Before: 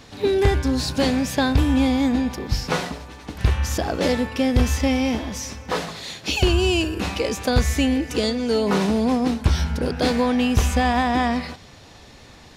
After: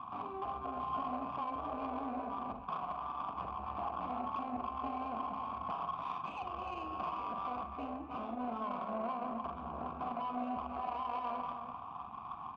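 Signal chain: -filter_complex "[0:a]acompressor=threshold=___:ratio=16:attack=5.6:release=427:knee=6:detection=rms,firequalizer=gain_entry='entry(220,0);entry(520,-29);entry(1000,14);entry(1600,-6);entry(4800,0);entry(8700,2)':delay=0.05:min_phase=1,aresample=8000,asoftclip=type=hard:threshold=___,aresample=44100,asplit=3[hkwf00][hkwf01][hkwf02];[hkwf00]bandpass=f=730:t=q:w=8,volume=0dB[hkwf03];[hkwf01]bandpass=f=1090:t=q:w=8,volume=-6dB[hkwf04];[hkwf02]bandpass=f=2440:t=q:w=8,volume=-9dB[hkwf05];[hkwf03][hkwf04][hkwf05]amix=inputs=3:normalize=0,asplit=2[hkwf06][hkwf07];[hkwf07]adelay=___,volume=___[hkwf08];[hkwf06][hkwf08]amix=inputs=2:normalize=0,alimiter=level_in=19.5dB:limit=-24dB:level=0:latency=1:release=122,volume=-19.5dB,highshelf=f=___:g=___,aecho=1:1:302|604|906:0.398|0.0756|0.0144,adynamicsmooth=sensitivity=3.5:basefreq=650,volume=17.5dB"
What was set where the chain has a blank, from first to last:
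-26dB, -34.5dB, 44, -5.5dB, 2700, 10.5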